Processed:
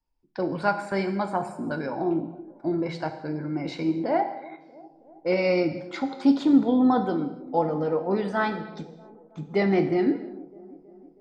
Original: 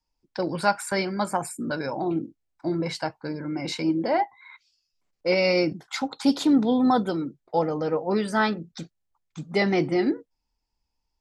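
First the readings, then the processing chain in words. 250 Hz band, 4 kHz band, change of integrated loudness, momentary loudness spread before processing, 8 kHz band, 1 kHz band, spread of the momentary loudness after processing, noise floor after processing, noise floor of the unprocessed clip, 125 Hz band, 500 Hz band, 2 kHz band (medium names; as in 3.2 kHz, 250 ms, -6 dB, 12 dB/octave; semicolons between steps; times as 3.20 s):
+1.0 dB, -8.0 dB, 0.0 dB, 13 LU, under -15 dB, -1.0 dB, 18 LU, -55 dBFS, -79 dBFS, 0.0 dB, 0.0 dB, -3.0 dB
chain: tape spacing loss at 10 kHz 22 dB; on a send: feedback echo behind a band-pass 321 ms, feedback 62%, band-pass 410 Hz, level -19.5 dB; on the sum: gated-style reverb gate 310 ms falling, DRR 6.5 dB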